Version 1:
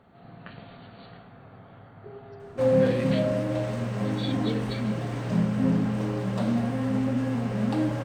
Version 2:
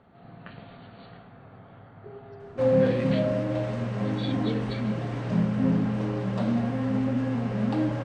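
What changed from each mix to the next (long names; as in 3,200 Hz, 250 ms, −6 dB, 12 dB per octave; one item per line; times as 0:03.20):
master: add high-frequency loss of the air 82 metres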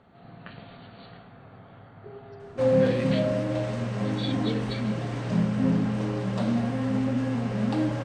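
master: add high-shelf EQ 4,600 Hz +9.5 dB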